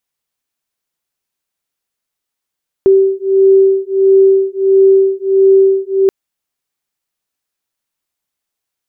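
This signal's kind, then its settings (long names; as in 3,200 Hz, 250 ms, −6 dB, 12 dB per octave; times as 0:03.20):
two tones that beat 386 Hz, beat 1.5 Hz, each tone −9.5 dBFS 3.23 s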